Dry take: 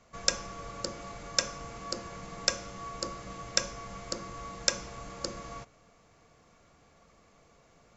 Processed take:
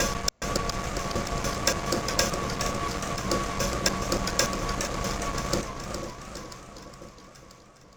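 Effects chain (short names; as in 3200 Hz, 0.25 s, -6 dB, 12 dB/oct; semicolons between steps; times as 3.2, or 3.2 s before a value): slices in reverse order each 0.144 s, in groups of 3; low shelf 330 Hz +5 dB; in parallel at -3 dB: fuzz box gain 34 dB, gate -42 dBFS; on the sum: echo with dull and thin repeats by turns 0.494 s, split 1100 Hz, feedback 63%, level -9.5 dB; warbling echo 0.414 s, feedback 51%, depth 126 cents, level -8 dB; gain -5 dB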